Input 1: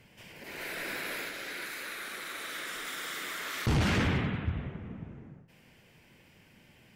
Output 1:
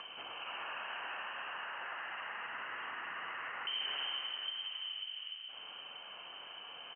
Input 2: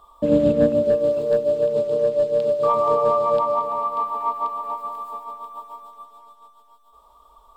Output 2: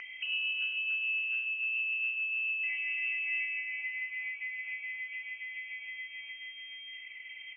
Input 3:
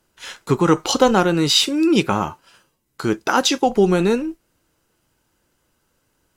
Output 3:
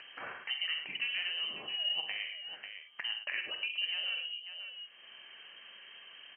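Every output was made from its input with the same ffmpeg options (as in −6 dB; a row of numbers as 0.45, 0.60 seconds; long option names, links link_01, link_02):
-filter_complex "[0:a]acompressor=threshold=-40dB:ratio=2.5,asplit=2[link_01][link_02];[link_02]aecho=0:1:46|65|106|544:0.376|0.299|0.316|0.211[link_03];[link_01][link_03]amix=inputs=2:normalize=0,lowpass=frequency=2700:width_type=q:width=0.5098,lowpass=frequency=2700:width_type=q:width=0.6013,lowpass=frequency=2700:width_type=q:width=0.9,lowpass=frequency=2700:width_type=q:width=2.563,afreqshift=-3200,acompressor=mode=upward:threshold=-33dB:ratio=2.5,highpass=frequency=250:poles=1,volume=-3.5dB"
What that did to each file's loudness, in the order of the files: −7.0, −12.5, −17.5 LU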